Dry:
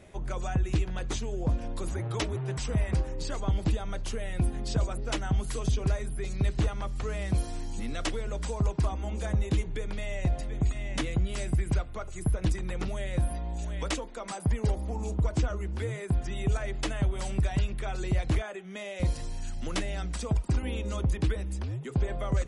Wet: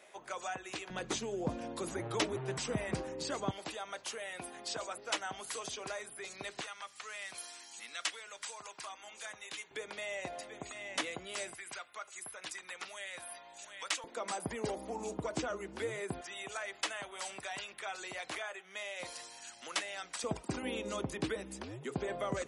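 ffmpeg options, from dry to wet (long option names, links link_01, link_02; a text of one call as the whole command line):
ffmpeg -i in.wav -af "asetnsamples=nb_out_samples=441:pad=0,asendcmd='0.9 highpass f 230;3.51 highpass f 670;6.61 highpass f 1400;9.71 highpass f 560;11.53 highpass f 1200;14.04 highpass f 320;16.21 highpass f 830;20.24 highpass f 270',highpass=670" out.wav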